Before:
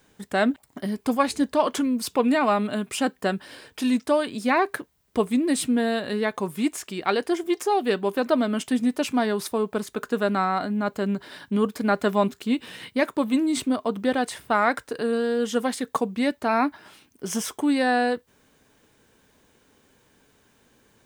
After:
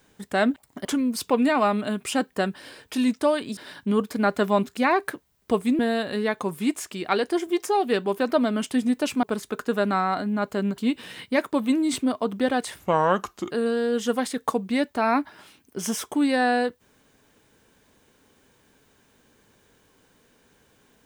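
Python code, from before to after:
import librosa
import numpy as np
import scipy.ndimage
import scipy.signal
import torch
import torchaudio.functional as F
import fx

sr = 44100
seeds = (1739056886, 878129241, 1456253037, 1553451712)

y = fx.edit(x, sr, fx.cut(start_s=0.85, length_s=0.86),
    fx.cut(start_s=5.45, length_s=0.31),
    fx.cut(start_s=9.2, length_s=0.47),
    fx.move(start_s=11.22, length_s=1.2, to_s=4.43),
    fx.speed_span(start_s=14.44, length_s=0.54, speed=0.76), tone=tone)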